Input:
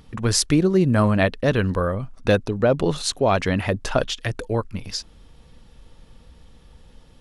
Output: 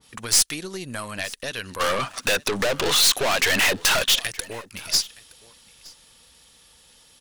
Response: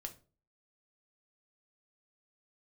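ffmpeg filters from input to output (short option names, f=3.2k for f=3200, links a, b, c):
-filter_complex "[0:a]highpass=f=67:p=1,lowshelf=f=420:g=-11.5,acompressor=threshold=-29dB:ratio=6,asplit=3[a][b][c];[a]afade=t=out:st=1.79:d=0.02[d];[b]asplit=2[e][f];[f]highpass=f=720:p=1,volume=33dB,asoftclip=type=tanh:threshold=-13dB[g];[e][g]amix=inputs=2:normalize=0,lowpass=f=1.3k:p=1,volume=-6dB,afade=t=in:st=1.79:d=0.02,afade=t=out:st=4.21:d=0.02[h];[c]afade=t=in:st=4.21:d=0.02[i];[d][h][i]amix=inputs=3:normalize=0,crystalizer=i=5.5:c=0,aeval=exprs='(tanh(6.31*val(0)+0.55)-tanh(0.55))/6.31':c=same,aecho=1:1:919:0.0841,adynamicequalizer=threshold=0.0158:dfrequency=1700:dqfactor=0.7:tfrequency=1700:tqfactor=0.7:attack=5:release=100:ratio=0.375:range=2.5:mode=boostabove:tftype=highshelf"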